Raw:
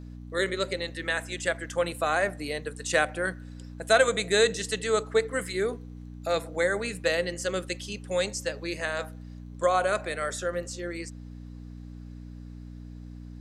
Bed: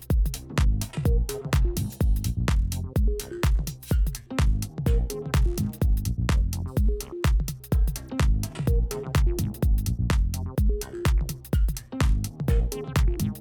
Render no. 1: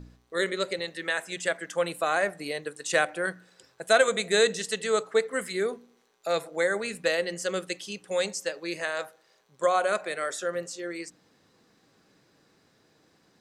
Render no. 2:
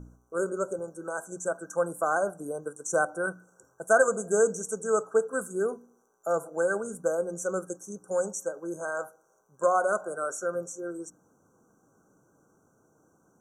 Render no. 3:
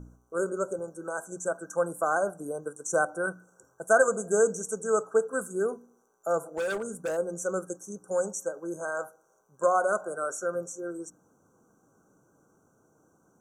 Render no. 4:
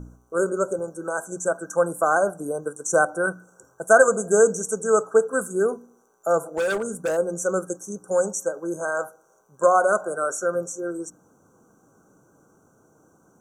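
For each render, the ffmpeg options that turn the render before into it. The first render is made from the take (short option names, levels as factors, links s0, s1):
-af "bandreject=f=60:t=h:w=4,bandreject=f=120:t=h:w=4,bandreject=f=180:t=h:w=4,bandreject=f=240:t=h:w=4,bandreject=f=300:t=h:w=4"
-af "afftfilt=real='re*(1-between(b*sr/4096,1600,5600))':imag='im*(1-between(b*sr/4096,1600,5600))':win_size=4096:overlap=0.75"
-filter_complex "[0:a]asplit=3[s0][s1][s2];[s0]afade=t=out:st=6.41:d=0.02[s3];[s1]volume=22.4,asoftclip=hard,volume=0.0447,afade=t=in:st=6.41:d=0.02,afade=t=out:st=7.16:d=0.02[s4];[s2]afade=t=in:st=7.16:d=0.02[s5];[s3][s4][s5]amix=inputs=3:normalize=0"
-af "volume=2.11"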